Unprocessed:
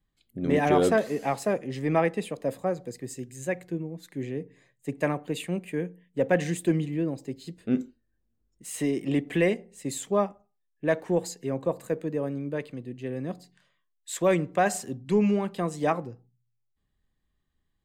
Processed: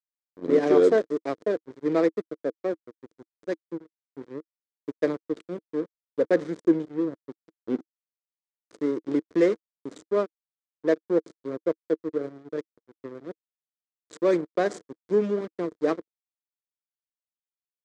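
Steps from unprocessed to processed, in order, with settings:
slack as between gear wheels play −23 dBFS
loudspeaker in its box 280–7,900 Hz, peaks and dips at 320 Hz +8 dB, 460 Hz +8 dB, 810 Hz −9 dB, 2,700 Hz −9 dB

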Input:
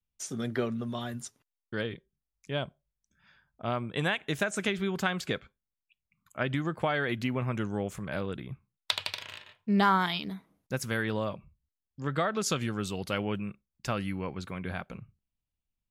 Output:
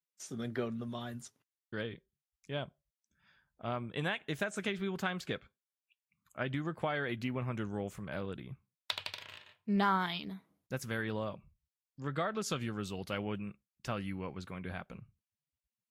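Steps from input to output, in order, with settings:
dynamic equaliser 8,500 Hz, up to −4 dB, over −51 dBFS, Q 0.73
level −5.5 dB
Ogg Vorbis 64 kbit/s 44,100 Hz

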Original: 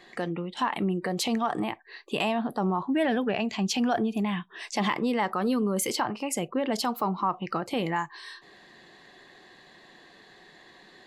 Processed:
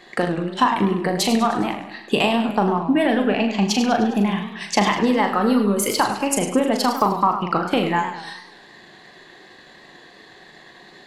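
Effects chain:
transient designer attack +6 dB, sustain −5 dB
flutter between parallel walls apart 6.8 metres, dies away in 0.33 s
feedback echo with a swinging delay time 102 ms, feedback 51%, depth 146 cents, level −10 dB
level +5.5 dB

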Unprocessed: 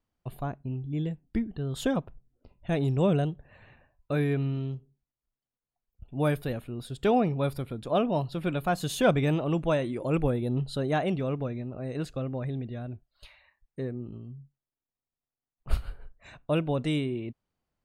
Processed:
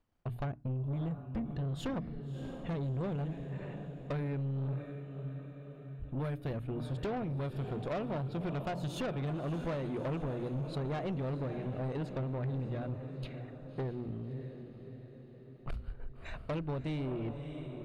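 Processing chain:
dynamic equaliser 100 Hz, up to +6 dB, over −40 dBFS, Q 0.8
downward compressor 12 to 1, threshold −31 dBFS, peak gain reduction 16.5 dB
high-shelf EQ 5,200 Hz −11.5 dB
transient designer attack +2 dB, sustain −7 dB
mains-hum notches 60/120/180/240/300 Hz
feedback delay with all-pass diffusion 622 ms, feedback 53%, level −11.5 dB
soft clipping −36 dBFS, distortion −9 dB
level +4.5 dB

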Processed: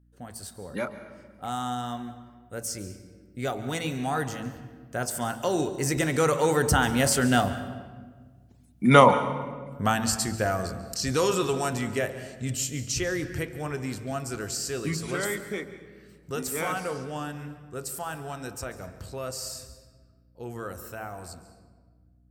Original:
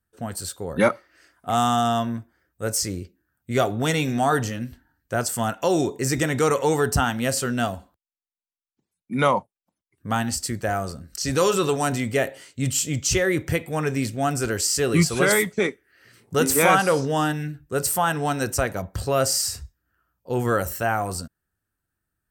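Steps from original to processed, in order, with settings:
source passing by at 0:08.44, 12 m/s, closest 8.8 metres
in parallel at −1 dB: downward compressor, threshold −49 dBFS, peak gain reduction 29 dB
on the sum: hum removal 55.72 Hz, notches 22
on a send at −12 dB: convolution reverb RT60 1.5 s, pre-delay 141 ms
on the sum: mains hum 60 Hz, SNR 32 dB
level +7 dB

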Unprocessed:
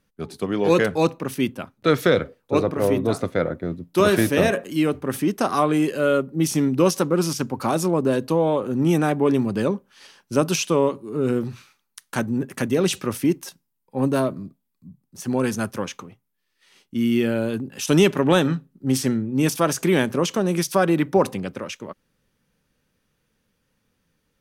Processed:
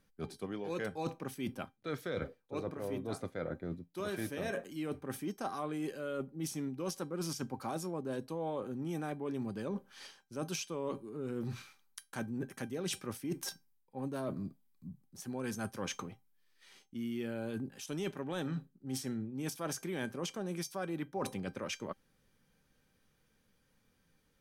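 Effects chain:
notch filter 2,700 Hz, Q 19
reversed playback
downward compressor 6 to 1, threshold −33 dBFS, peak gain reduction 20 dB
reversed playback
tuned comb filter 790 Hz, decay 0.18 s, harmonics all, mix 70%
level +6.5 dB

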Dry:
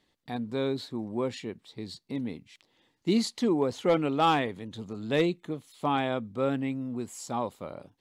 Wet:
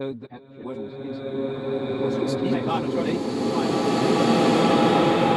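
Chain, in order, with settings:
slices reordered back to front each 189 ms, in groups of 4
low-pass that shuts in the quiet parts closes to 310 Hz, open at −26 dBFS
time stretch by phase vocoder 0.67×
slow-attack reverb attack 2,240 ms, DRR −12 dB

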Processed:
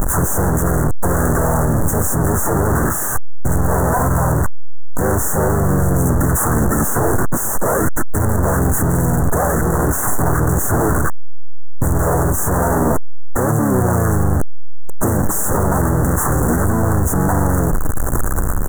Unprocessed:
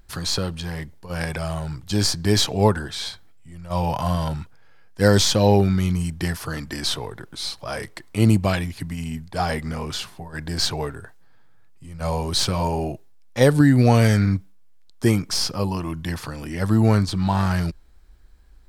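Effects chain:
sign of each sample alone
pitch-shifted copies added −5 semitones 0 dB, +7 semitones −9 dB
inverse Chebyshev band-stop filter 2,300–5,000 Hz, stop band 40 dB
level +4.5 dB

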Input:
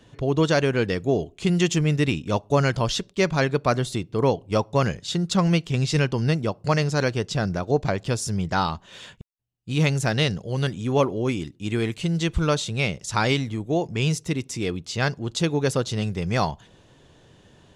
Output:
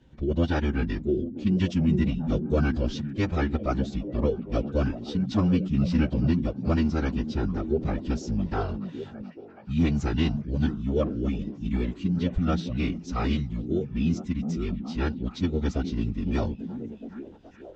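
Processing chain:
low-shelf EQ 370 Hz +9.5 dB
phase-vocoder pitch shift with formants kept −11 semitones
high-frequency loss of the air 61 metres
echo through a band-pass that steps 422 ms, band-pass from 180 Hz, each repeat 0.7 octaves, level −5 dB
level −9 dB

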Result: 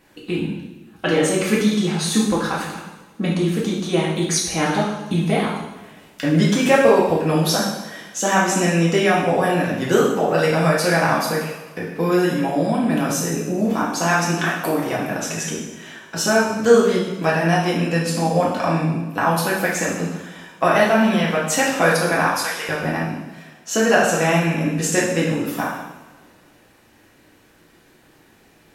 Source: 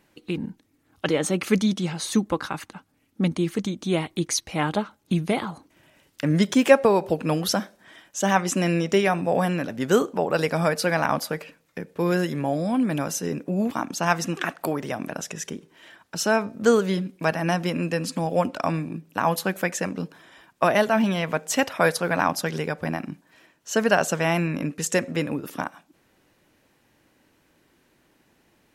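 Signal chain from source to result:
0:22.23–0:22.69: high-pass filter 1,000 Hz 12 dB per octave
in parallel at +1 dB: downward compressor, threshold −32 dBFS, peak gain reduction 20.5 dB
on the sum: coupled-rooms reverb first 0.9 s, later 2.3 s, from −18 dB, DRR −5.5 dB
level −3 dB

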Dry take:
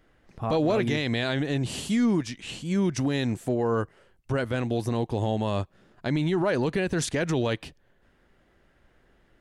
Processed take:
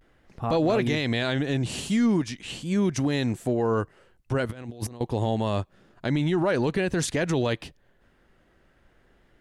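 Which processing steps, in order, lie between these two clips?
pitch vibrato 0.44 Hz 46 cents
0:04.49–0:05.01: compressor whose output falls as the input rises −35 dBFS, ratio −0.5
level +1 dB

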